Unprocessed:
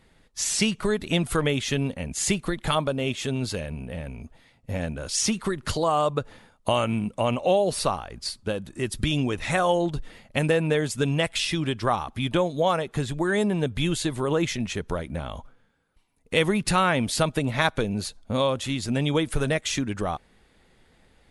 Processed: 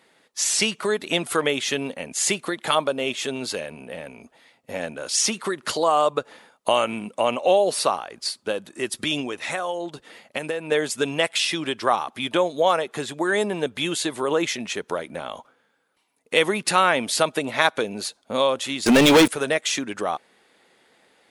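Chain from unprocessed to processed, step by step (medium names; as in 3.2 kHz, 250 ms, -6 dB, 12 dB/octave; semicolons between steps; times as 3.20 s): high-pass 350 Hz 12 dB/octave; 9.20–10.72 s: compression 3:1, threshold -31 dBFS, peak gain reduction 10 dB; 18.86–19.28 s: waveshaping leveller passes 5; trim +4 dB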